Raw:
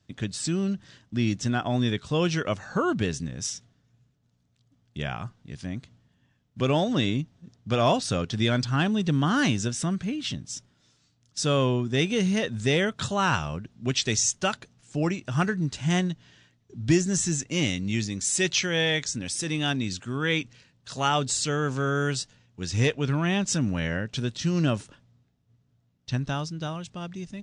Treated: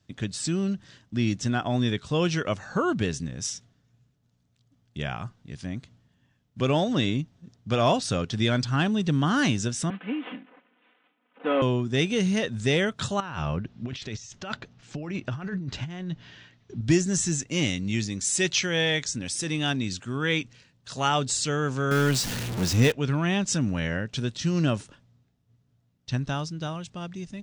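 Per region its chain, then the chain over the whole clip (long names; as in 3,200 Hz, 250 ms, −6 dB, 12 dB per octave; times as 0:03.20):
0:09.90–0:11.62: variable-slope delta modulation 16 kbit/s + high-pass filter 260 Hz 24 dB per octave + comb filter 4 ms, depth 79%
0:13.20–0:16.81: compressor whose output falls as the input rises −32 dBFS + high-frequency loss of the air 160 metres + one half of a high-frequency compander encoder only
0:21.91–0:22.92: converter with a step at zero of −26 dBFS + parametric band 220 Hz +7 dB 0.55 octaves
whole clip: no processing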